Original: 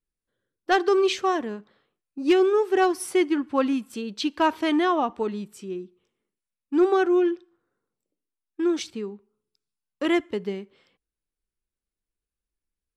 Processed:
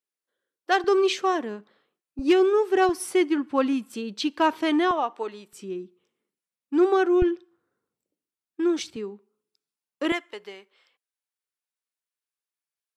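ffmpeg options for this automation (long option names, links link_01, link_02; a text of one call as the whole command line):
ffmpeg -i in.wav -af "asetnsamples=nb_out_samples=441:pad=0,asendcmd='0.84 highpass f 200;2.19 highpass f 51;2.89 highpass f 130;4.91 highpass f 490;5.53 highpass f 160;7.22 highpass f 59;8.96 highpass f 220;10.12 highpass f 760',highpass=430" out.wav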